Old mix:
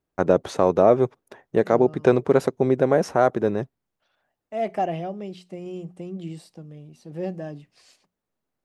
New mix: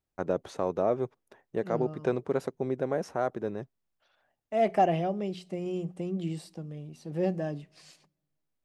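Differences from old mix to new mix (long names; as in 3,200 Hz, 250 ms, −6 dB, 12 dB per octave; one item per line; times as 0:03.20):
first voice −11.0 dB
reverb: on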